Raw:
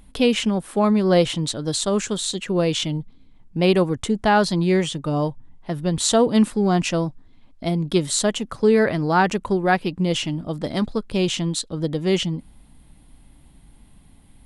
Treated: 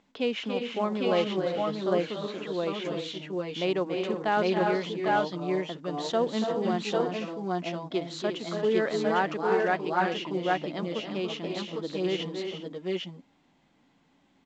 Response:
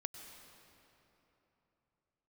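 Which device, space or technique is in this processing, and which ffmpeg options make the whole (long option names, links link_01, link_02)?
telephone: -filter_complex "[0:a]aecho=1:1:283|302|347|397|801|812:0.398|0.316|0.398|0.168|0.631|0.562,asettb=1/sr,asplit=3[link_01][link_02][link_03];[link_01]atrim=end=1.414[link_04];[link_02]atrim=start=1.41:end=2.85,asetpts=PTS-STARTPTS,afade=type=in:duration=0.004:curve=qsin,afade=type=out:start_time=1.436:duration=0.004:curve=qsin,acrossover=split=3200[link_05][link_06];[link_06]acompressor=threshold=-35dB:ratio=4:attack=1:release=60[link_07];[link_05][link_07]amix=inputs=2:normalize=0[link_08];[link_03]atrim=start=2.846[link_09];[link_04][link_08]acrossfade=duration=0.004:curve1=hsin:curve2=qsin[link_10];[link_10][link_09]acrossfade=duration=0.004:curve1=qsin:curve2=hsin,highpass=280,lowpass=3400,volume=-8.5dB" -ar 16000 -c:a pcm_mulaw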